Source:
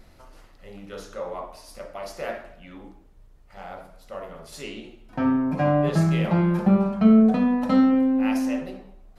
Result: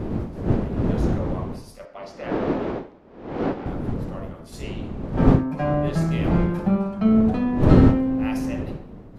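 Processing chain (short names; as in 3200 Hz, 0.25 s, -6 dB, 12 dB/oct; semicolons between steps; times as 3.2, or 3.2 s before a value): wind noise 250 Hz -20 dBFS; 1.85–3.66 three-band isolator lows -18 dB, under 290 Hz, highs -20 dB, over 6100 Hz; gain -2.5 dB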